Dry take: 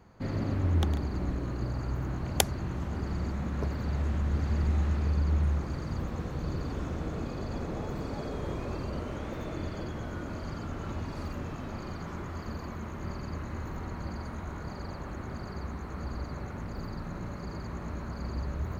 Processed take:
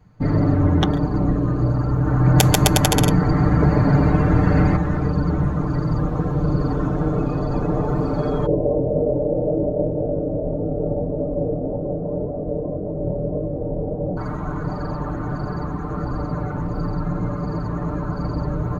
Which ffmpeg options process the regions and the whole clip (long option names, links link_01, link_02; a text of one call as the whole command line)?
ffmpeg -i in.wav -filter_complex "[0:a]asettb=1/sr,asplit=3[link_01][link_02][link_03];[link_01]atrim=end=1.924[link_04];[link_02]atrim=start=1.92:end=4.76,asetpts=PTS-STARTPTS,afade=type=in:duration=0.004:curve=qsin,afade=type=out:start_time=2.836:duration=0.004:curve=qsin,asoftclip=type=hard:threshold=-8.5dB,aecho=1:1:140|259|360.2|446.1|519.2|581.3|634.1|679:0.794|0.631|0.501|0.398|0.316|0.251|0.2|0.158,atrim=end_sample=125244[link_05];[link_03]atrim=start=4.756[link_06];[link_04][link_05]acrossfade=duration=0.004:curve1=hsin:curve2=qsin[link_07];[link_07][link_06]acrossfade=duration=0.004:curve1=qsin:curve2=hsin,asettb=1/sr,asplit=3[link_08][link_09][link_10];[link_08]atrim=end=8.464[link_11];[link_09]atrim=start=8.46:end=14.17,asetpts=PTS-STARTPTS,afade=type=in:duration=0.004:curve=qsin,afade=type=out:start_time=5.706:duration=0.004:curve=qsin,flanger=delay=19:depth=7.6:speed=1.8,acrusher=bits=3:mode=log:mix=0:aa=0.000001,lowpass=frequency=540:width_type=q:width=4.3[link_12];[link_10]atrim=start=14.166[link_13];[link_11][link_12]acrossfade=duration=0.004:curve1=hsin:curve2=qsin[link_14];[link_14][link_13]acrossfade=duration=0.004:curve1=qsin:curve2=hsin,afftdn=noise_reduction=16:noise_floor=-44,aecho=1:1:6.7:0.77,alimiter=level_in=13.5dB:limit=-1dB:release=50:level=0:latency=1,volume=-1dB" out.wav